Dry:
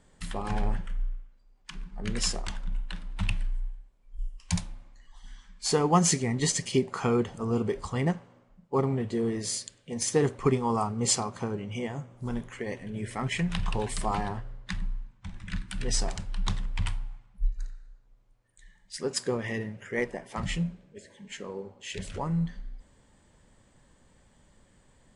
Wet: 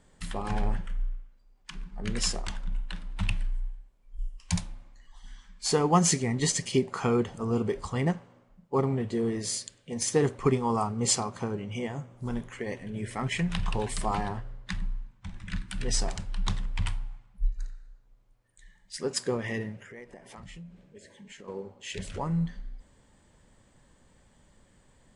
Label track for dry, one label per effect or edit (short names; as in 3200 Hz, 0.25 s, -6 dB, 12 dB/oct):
19.810000	21.480000	compressor 4:1, threshold -45 dBFS